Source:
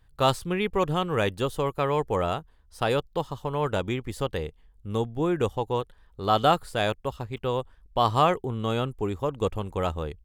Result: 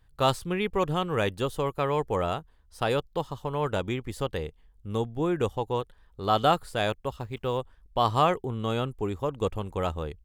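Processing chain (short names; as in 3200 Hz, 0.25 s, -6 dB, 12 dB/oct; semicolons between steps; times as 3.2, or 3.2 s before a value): 7.14–7.58 companded quantiser 8-bit; gain -1.5 dB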